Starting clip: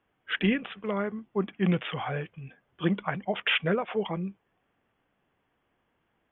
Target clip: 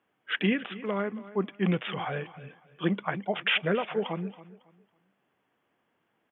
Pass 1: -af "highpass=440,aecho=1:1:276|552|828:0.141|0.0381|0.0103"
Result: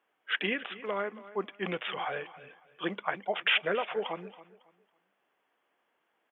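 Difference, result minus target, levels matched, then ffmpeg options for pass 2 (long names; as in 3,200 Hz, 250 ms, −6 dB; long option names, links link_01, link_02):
125 Hz band −11.5 dB
-af "highpass=150,aecho=1:1:276|552|828:0.141|0.0381|0.0103"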